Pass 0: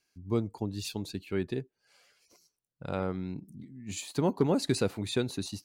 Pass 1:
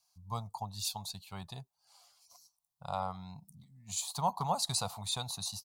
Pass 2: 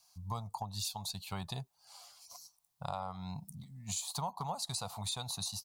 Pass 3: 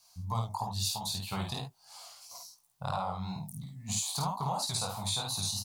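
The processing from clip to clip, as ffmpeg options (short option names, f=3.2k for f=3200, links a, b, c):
-af "firequalizer=gain_entry='entry(160,0);entry(320,-26);entry(720,13);entry(1100,13);entry(1600,-8);entry(2500,-3);entry(3700,9);entry(11000,13)':delay=0.05:min_phase=1,volume=-6.5dB"
-af "acompressor=threshold=-44dB:ratio=6,volume=8dB"
-af "flanger=delay=15.5:depth=7.3:speed=3,aecho=1:1:52|71:0.668|0.158,volume=7dB"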